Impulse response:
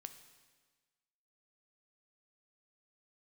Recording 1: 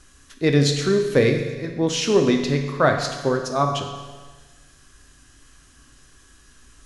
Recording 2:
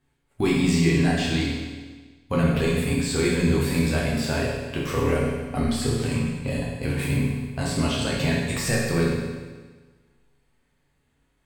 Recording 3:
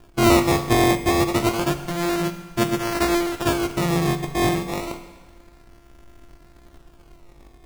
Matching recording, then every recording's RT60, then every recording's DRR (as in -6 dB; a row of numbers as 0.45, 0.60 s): 3; 1.4, 1.4, 1.4 s; 3.5, -5.5, 8.5 dB